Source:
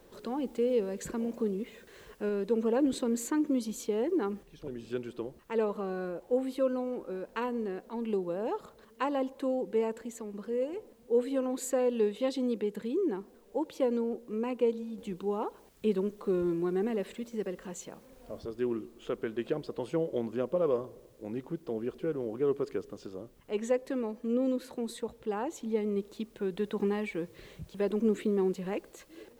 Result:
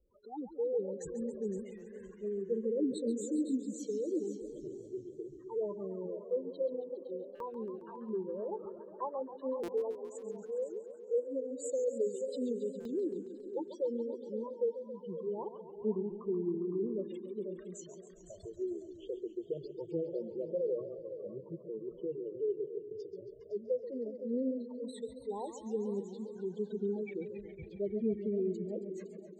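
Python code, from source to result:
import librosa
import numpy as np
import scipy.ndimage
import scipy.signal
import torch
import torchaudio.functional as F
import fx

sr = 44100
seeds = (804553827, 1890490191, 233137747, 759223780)

p1 = fx.dynamic_eq(x, sr, hz=2200.0, q=1.4, threshold_db=-53.0, ratio=4.0, max_db=-4)
p2 = fx.spec_gate(p1, sr, threshold_db=-10, keep='strong')
p3 = p2 + fx.echo_feedback(p2, sr, ms=511, feedback_pct=21, wet_db=-11, dry=0)
p4 = fx.noise_reduce_blind(p3, sr, reduce_db=18)
p5 = fx.buffer_glitch(p4, sr, at_s=(1.77, 7.35, 9.63, 12.8), block=256, repeats=8)
p6 = fx.echo_warbled(p5, sr, ms=137, feedback_pct=75, rate_hz=2.8, cents=159, wet_db=-12.0)
y = p6 * librosa.db_to_amplitude(-4.5)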